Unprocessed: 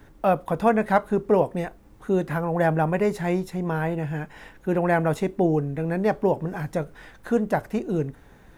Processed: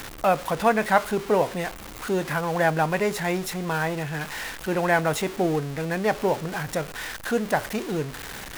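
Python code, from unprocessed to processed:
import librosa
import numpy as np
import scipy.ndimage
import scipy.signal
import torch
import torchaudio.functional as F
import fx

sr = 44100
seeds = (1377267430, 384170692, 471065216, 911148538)

y = x + 0.5 * 10.0 ** (-32.5 / 20.0) * np.sign(x)
y = fx.tilt_shelf(y, sr, db=-5.5, hz=760.0)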